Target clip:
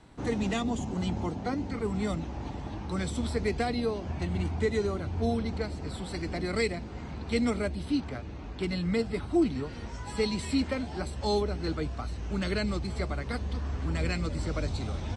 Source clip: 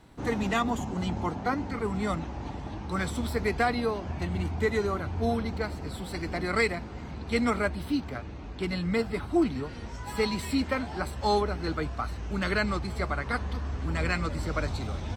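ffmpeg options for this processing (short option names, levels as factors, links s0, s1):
-filter_complex "[0:a]acrossover=split=690|2300[s0][s1][s2];[s1]acompressor=threshold=0.00501:ratio=6[s3];[s0][s3][s2]amix=inputs=3:normalize=0,aresample=22050,aresample=44100"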